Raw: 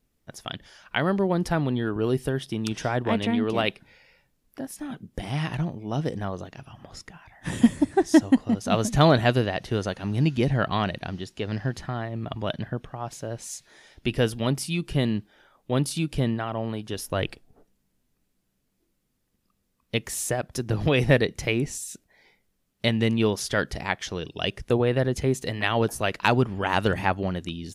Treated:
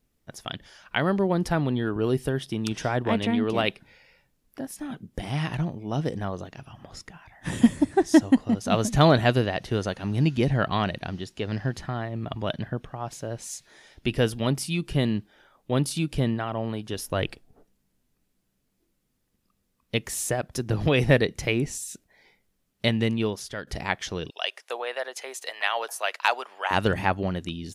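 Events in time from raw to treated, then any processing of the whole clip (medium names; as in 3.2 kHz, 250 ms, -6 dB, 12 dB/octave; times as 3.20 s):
22.90–23.67 s: fade out, to -14 dB
24.30–26.71 s: high-pass 630 Hz 24 dB/octave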